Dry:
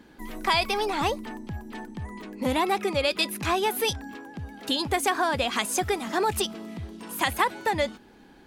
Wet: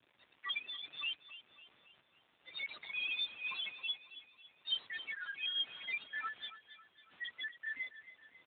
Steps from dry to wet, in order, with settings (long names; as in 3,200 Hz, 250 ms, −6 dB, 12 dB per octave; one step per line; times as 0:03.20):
every bin's largest magnitude spread in time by 60 ms
high-pass filter 1,200 Hz 24 dB per octave
first difference
comb filter 6.8 ms, depth 71%
spectral peaks only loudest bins 2
bit reduction 8 bits
surface crackle 380 per second −52 dBFS
sample-and-hold tremolo
repeating echo 274 ms, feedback 48%, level −14 dB
level +6 dB
AMR narrowband 10.2 kbit/s 8,000 Hz